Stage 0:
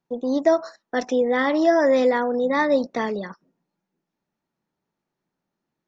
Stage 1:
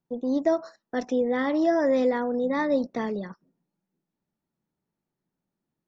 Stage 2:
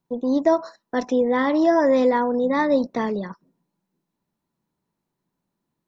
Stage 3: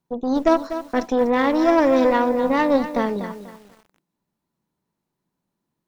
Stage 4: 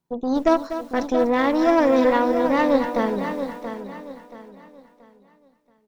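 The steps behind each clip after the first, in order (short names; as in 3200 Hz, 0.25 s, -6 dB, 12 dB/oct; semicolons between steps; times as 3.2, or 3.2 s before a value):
low shelf 360 Hz +9.5 dB; gain -8 dB
small resonant body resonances 1000/4000 Hz, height 9 dB, ringing for 30 ms; gain +4.5 dB
added harmonics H 2 -12 dB, 6 -23 dB, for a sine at -7.5 dBFS; lo-fi delay 0.245 s, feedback 35%, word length 7-bit, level -11 dB
feedback echo 0.679 s, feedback 32%, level -9.5 dB; gain -1 dB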